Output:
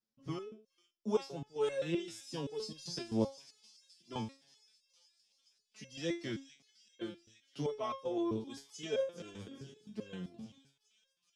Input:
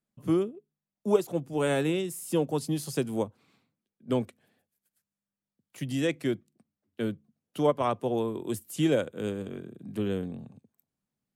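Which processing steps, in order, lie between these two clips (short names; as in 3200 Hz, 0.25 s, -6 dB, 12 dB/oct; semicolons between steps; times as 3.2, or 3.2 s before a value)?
synth low-pass 5300 Hz, resonance Q 4.6; thin delay 0.422 s, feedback 69%, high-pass 4100 Hz, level -11 dB; stepped resonator 7.7 Hz 110–540 Hz; gain +3 dB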